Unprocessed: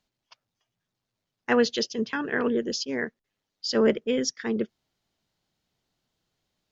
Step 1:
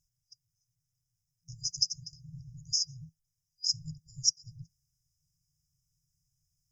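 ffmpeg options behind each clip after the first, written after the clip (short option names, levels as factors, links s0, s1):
-af "afftfilt=real='re*(1-between(b*sr/4096,170,4900))':imag='im*(1-between(b*sr/4096,170,4900))':win_size=4096:overlap=0.75,volume=1.68"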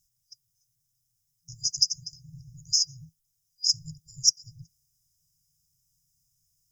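-af "aexciter=amount=2.7:drive=3.8:freq=3200"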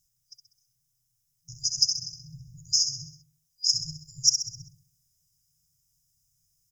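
-af "aecho=1:1:65|130|195|260|325|390:0.422|0.211|0.105|0.0527|0.0264|0.0132"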